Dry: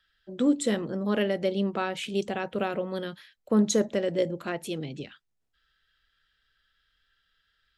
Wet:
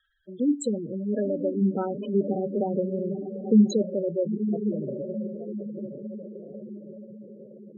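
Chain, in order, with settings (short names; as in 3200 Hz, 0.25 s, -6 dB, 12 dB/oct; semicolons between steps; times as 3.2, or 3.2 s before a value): 1.61–3.72 tilt shelf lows +7 dB, about 830 Hz; diffused feedback echo 0.952 s, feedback 53%, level -7 dB; spectral gate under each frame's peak -10 dB strong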